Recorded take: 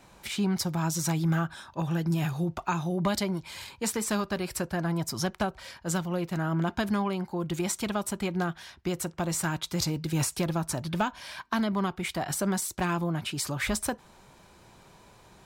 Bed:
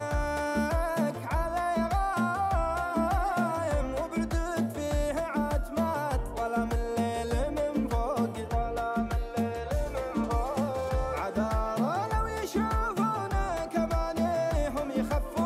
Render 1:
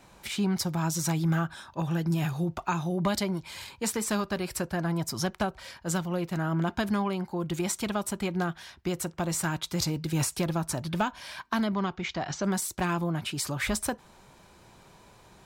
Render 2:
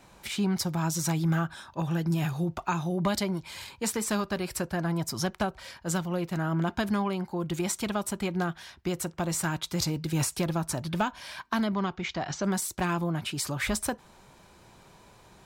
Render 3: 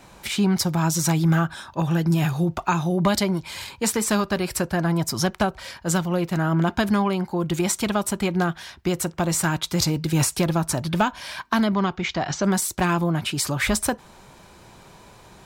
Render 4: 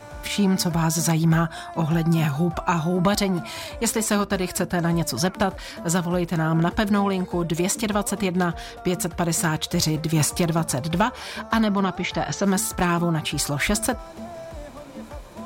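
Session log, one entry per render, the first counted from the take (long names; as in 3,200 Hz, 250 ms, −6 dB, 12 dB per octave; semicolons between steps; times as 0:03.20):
0:11.74–0:12.44: elliptic low-pass filter 6,600 Hz
no processing that can be heard
level +7 dB
mix in bed −9 dB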